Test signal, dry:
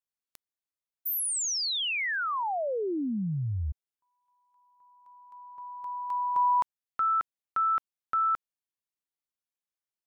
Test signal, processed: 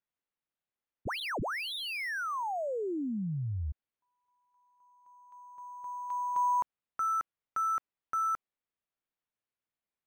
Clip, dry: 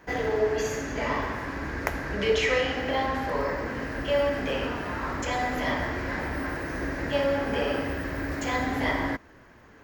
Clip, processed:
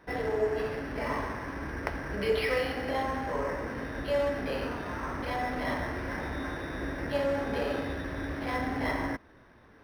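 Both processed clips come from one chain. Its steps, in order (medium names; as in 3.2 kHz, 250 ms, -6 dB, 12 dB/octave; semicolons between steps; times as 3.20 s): decimation joined by straight lines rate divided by 6×; trim -3.5 dB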